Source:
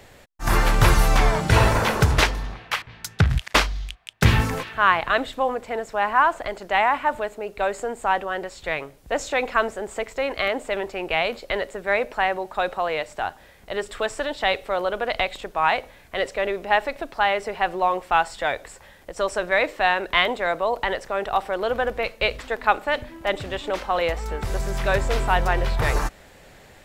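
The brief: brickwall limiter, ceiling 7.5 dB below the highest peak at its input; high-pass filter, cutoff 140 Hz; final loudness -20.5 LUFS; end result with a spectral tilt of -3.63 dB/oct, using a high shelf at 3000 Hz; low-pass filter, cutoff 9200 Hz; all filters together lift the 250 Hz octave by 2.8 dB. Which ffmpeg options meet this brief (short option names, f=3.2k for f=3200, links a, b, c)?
-af "highpass=140,lowpass=9.2k,equalizer=f=250:t=o:g=5,highshelf=f=3k:g=-7.5,volume=5.5dB,alimiter=limit=-6.5dB:level=0:latency=1"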